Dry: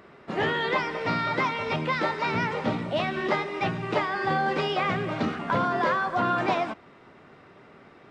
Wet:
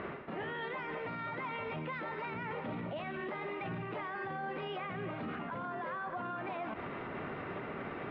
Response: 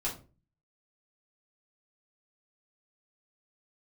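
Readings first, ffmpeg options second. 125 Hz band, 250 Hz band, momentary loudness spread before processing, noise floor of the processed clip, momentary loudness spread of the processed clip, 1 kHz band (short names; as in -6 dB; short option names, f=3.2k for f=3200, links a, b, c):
-11.0 dB, -11.5 dB, 4 LU, -43 dBFS, 2 LU, -13.0 dB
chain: -af "lowpass=f=3k:w=0.5412,lowpass=f=3k:w=1.3066,areverse,acompressor=threshold=-40dB:ratio=10,areverse,alimiter=level_in=19.5dB:limit=-24dB:level=0:latency=1:release=66,volume=-19.5dB,volume=11.5dB"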